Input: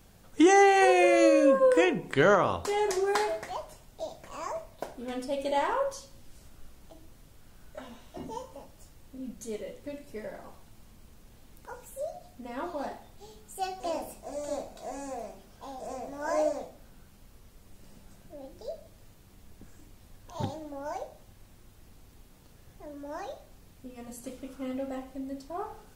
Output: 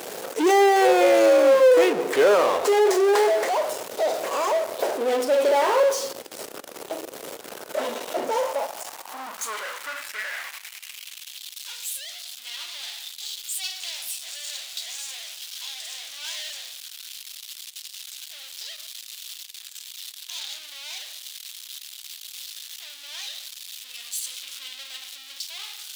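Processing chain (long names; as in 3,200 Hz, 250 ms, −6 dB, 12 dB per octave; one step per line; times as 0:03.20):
power curve on the samples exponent 0.35
high-pass filter sweep 450 Hz → 3,500 Hz, 0:08.00–0:11.44
level −5 dB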